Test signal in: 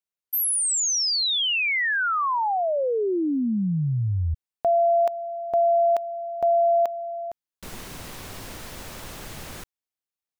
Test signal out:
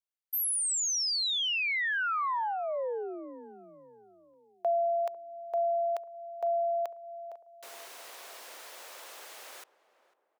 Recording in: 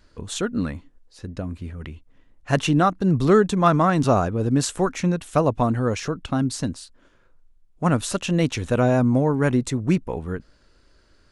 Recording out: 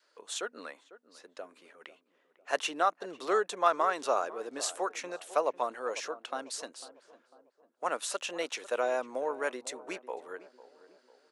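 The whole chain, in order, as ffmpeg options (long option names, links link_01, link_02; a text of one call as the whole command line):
ffmpeg -i in.wav -filter_complex "[0:a]highpass=frequency=470:width=0.5412,highpass=frequency=470:width=1.3066,asplit=2[link_01][link_02];[link_02]adelay=499,lowpass=frequency=1100:poles=1,volume=-15.5dB,asplit=2[link_03][link_04];[link_04]adelay=499,lowpass=frequency=1100:poles=1,volume=0.49,asplit=2[link_05][link_06];[link_06]adelay=499,lowpass=frequency=1100:poles=1,volume=0.49,asplit=2[link_07][link_08];[link_08]adelay=499,lowpass=frequency=1100:poles=1,volume=0.49[link_09];[link_01][link_03][link_05][link_07][link_09]amix=inputs=5:normalize=0,adynamicequalizer=threshold=0.0178:dfrequency=730:dqfactor=3.3:tfrequency=730:tqfactor=3.3:attack=5:release=100:ratio=0.375:range=3.5:mode=cutabove:tftype=bell,volume=-6.5dB" out.wav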